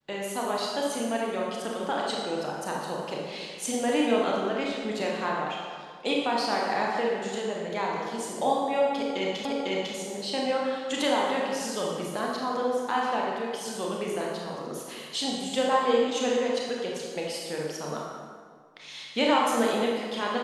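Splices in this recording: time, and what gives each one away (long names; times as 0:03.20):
0:09.45: the same again, the last 0.5 s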